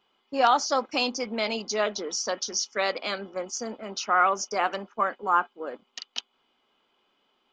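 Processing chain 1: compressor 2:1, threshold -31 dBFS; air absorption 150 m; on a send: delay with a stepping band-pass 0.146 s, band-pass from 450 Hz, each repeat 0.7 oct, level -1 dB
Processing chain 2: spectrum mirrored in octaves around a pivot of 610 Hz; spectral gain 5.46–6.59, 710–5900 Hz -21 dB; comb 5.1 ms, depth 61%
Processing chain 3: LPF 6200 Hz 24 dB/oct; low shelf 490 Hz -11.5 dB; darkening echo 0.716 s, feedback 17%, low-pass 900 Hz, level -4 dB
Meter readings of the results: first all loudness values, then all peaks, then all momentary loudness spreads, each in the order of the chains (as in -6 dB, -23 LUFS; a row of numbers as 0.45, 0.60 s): -32.5, -29.0, -29.0 LUFS; -16.5, -10.5, -10.5 dBFS; 7, 13, 12 LU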